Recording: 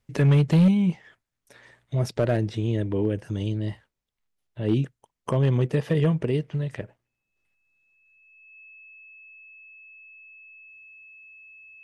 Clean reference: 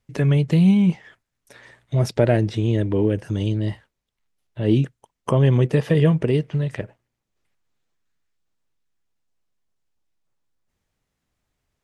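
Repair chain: clip repair -13.5 dBFS; band-stop 2.6 kHz, Q 30; trim 0 dB, from 0.68 s +5 dB

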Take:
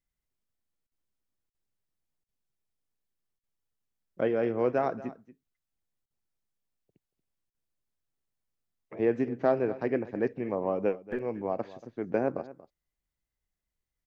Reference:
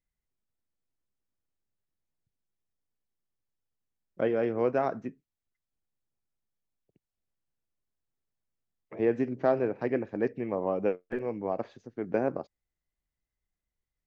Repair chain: interpolate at 0.87/1.50/2.24/3.39/6.06/7.50 s, 44 ms; inverse comb 233 ms -17.5 dB

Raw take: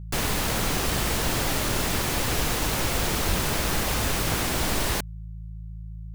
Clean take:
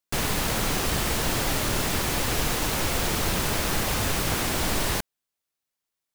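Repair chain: de-hum 54.4 Hz, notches 3; 3.27–3.39 s: high-pass 140 Hz 24 dB/octave

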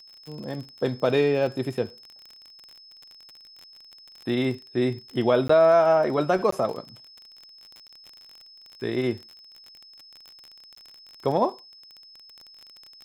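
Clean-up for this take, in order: de-click; band-stop 5.2 kHz, Q 30; interpolate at 5.48/6.51/7.88/10.75 s, 14 ms

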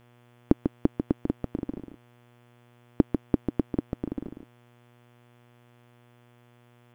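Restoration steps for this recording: de-hum 120.5 Hz, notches 29; inverse comb 145 ms -6.5 dB

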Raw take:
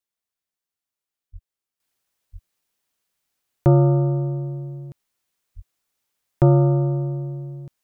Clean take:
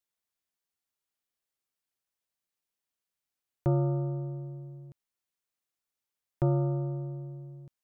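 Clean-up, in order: 1.32–1.44 s: high-pass 140 Hz 24 dB/octave; 2.32–2.44 s: high-pass 140 Hz 24 dB/octave; 5.55–5.67 s: high-pass 140 Hz 24 dB/octave; trim 0 dB, from 1.80 s -11.5 dB

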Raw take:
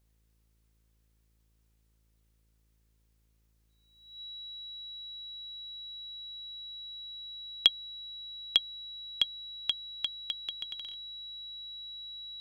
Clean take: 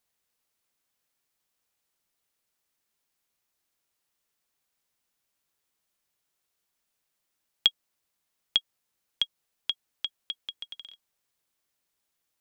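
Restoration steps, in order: de-hum 54.7 Hz, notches 10; band-stop 3.9 kHz, Q 30

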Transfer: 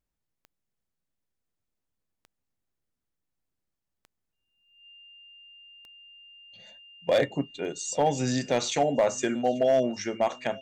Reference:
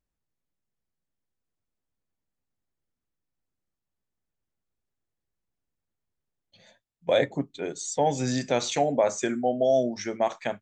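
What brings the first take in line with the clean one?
clip repair -15.5 dBFS; de-click; band-stop 2.8 kHz, Q 30; inverse comb 837 ms -23.5 dB

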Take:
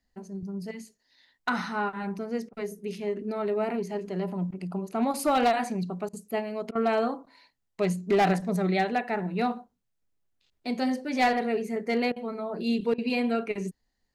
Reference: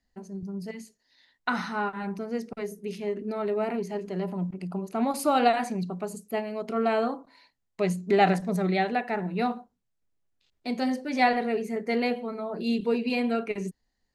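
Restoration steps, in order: clip repair -17.5 dBFS; interpolate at 2.49/6.09/6.71/12.12/12.94 s, 41 ms

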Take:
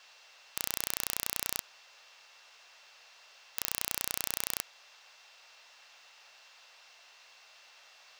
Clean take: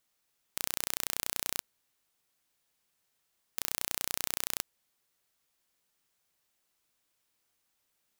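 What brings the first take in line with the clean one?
band-stop 2.7 kHz, Q 30; noise print and reduce 20 dB

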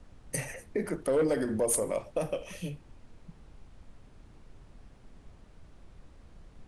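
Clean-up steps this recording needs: noise print and reduce 22 dB

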